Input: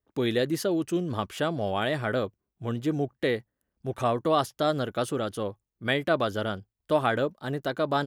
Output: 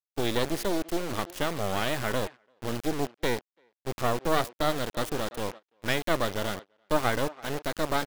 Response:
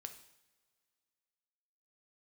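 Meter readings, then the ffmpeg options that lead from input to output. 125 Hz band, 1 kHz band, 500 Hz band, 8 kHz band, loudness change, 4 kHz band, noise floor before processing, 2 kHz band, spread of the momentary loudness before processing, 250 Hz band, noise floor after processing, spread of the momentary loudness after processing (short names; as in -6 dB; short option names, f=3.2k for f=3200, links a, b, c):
-3.0 dB, -1.0 dB, -3.0 dB, +5.5 dB, -2.0 dB, +1.0 dB, -85 dBFS, 0.0 dB, 9 LU, -3.0 dB, under -85 dBFS, 9 LU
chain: -filter_complex "[0:a]acrusher=bits=3:dc=4:mix=0:aa=0.000001,asplit=2[a][b];[b]adelay=340,highpass=300,lowpass=3.4k,asoftclip=type=hard:threshold=-20.5dB,volume=-16dB[c];[a][c]amix=inputs=2:normalize=0,agate=range=-19dB:threshold=-41dB:ratio=16:detection=peak,volume=1.5dB"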